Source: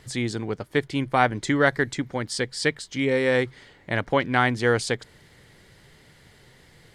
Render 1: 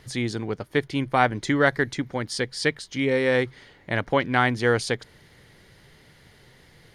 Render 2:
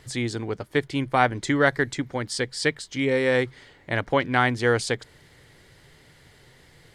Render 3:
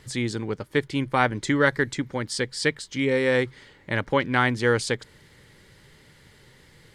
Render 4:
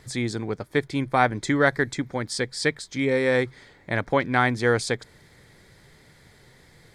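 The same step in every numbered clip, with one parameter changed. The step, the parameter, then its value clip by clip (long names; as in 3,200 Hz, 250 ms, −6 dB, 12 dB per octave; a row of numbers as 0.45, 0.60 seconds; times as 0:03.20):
notch filter, centre frequency: 7,700, 200, 700, 2,900 Hertz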